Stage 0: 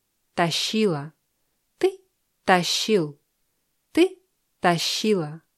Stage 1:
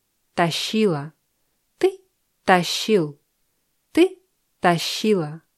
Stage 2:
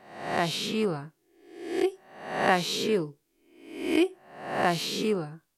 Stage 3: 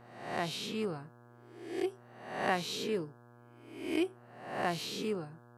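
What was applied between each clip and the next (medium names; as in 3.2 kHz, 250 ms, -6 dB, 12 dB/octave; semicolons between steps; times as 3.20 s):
dynamic bell 5.4 kHz, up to -5 dB, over -39 dBFS, Q 1; trim +2.5 dB
reverse spectral sustain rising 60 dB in 0.73 s; trim -9 dB
mains buzz 120 Hz, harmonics 14, -50 dBFS -4 dB/octave; trim -8 dB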